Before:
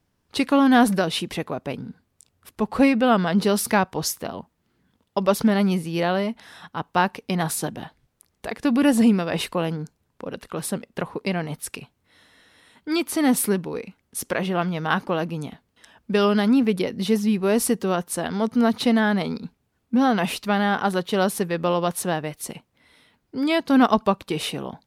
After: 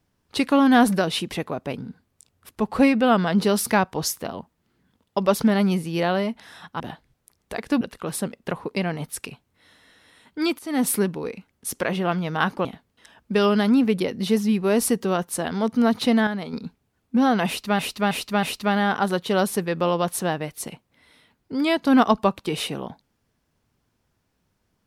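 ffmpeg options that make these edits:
-filter_complex "[0:a]asplit=10[s0][s1][s2][s3][s4][s5][s6][s7][s8][s9];[s0]atrim=end=6.802[s10];[s1]atrim=start=7.728:end=8.742[s11];[s2]atrim=start=10.308:end=13.09,asetpts=PTS-STARTPTS,afade=t=out:st=2.778:d=0.004:c=hsin:silence=0.105925[s12];[s3]atrim=start=13.09:end=15.152,asetpts=PTS-STARTPTS,afade=t=in:d=0.31:silence=0.105925[s13];[s4]atrim=start=15.438:end=19.062[s14];[s5]atrim=start=19.058:end=19.322,asetpts=PTS-STARTPTS,volume=0.447[s15];[s6]atrim=start=19.318:end=20.582[s16];[s7]atrim=start=20.258:end=20.582[s17];[s8]atrim=start=20.258:end=20.582[s18];[s9]atrim=start=20.258[s19];[s10][s11]acrossfade=d=0.004:c1=hsin:c2=hsin[s20];[s12][s13]concat=n=2:v=0:a=1[s21];[s20][s21]acrossfade=d=0.004:c1=hsin:c2=hsin[s22];[s22][s14]acrossfade=d=0.004:c1=hsin:c2=hsin[s23];[s23][s15]acrossfade=d=0.004:c1=hsin:c2=hsin[s24];[s24][s16]acrossfade=d=0.004:c1=hsin:c2=hsin[s25];[s25][s17]acrossfade=d=0.004:c1=hsin:c2=hsin[s26];[s26][s18]acrossfade=d=0.004:c1=hsin:c2=hsin[s27];[s27][s19]acrossfade=d=0.004:c1=hsin:c2=hsin"

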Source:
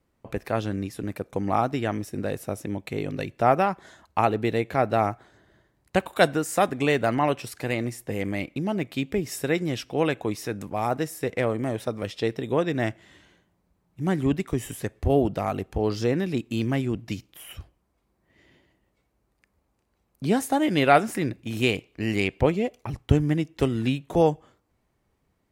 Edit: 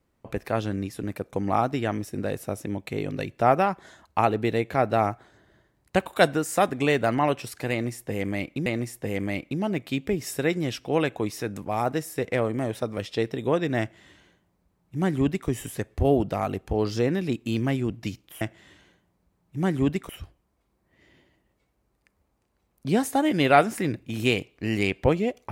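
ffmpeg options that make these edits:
-filter_complex "[0:a]asplit=4[s0][s1][s2][s3];[s0]atrim=end=8.662[s4];[s1]atrim=start=7.708:end=17.462[s5];[s2]atrim=start=12.848:end=14.532[s6];[s3]atrim=start=17.458[s7];[s4][s5]acrossfade=d=0.004:c1=hsin:c2=hsin[s8];[s8][s6]acrossfade=d=0.004:c1=hsin:c2=hsin[s9];[s9][s7]acrossfade=d=0.004:c1=hsin:c2=hsin"

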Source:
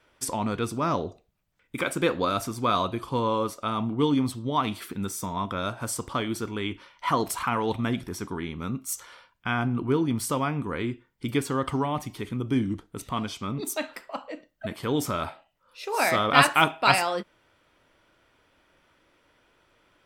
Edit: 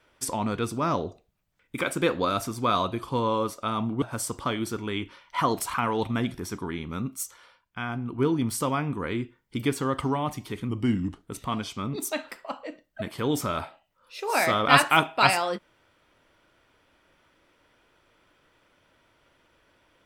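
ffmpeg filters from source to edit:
-filter_complex "[0:a]asplit=6[s0][s1][s2][s3][s4][s5];[s0]atrim=end=4.022[s6];[s1]atrim=start=5.708:end=8.922[s7];[s2]atrim=start=8.918:end=9.872,asetpts=PTS-STARTPTS,volume=0.531[s8];[s3]atrim=start=9.868:end=12.384[s9];[s4]atrim=start=12.38:end=12.88,asetpts=PTS-STARTPTS,asetrate=40572,aresample=44100,atrim=end_sample=23967,asetpts=PTS-STARTPTS[s10];[s5]atrim=start=12.876[s11];[s6][s7]acrossfade=d=0.004:c1=hsin:c2=hsin[s12];[s12][s8]acrossfade=d=0.004:c1=hsin:c2=hsin[s13];[s13][s9]acrossfade=d=0.004:c1=hsin:c2=hsin[s14];[s14][s10]acrossfade=d=0.004:c1=hsin:c2=hsin[s15];[s15][s11]acrossfade=d=0.004:c1=hsin:c2=hsin"

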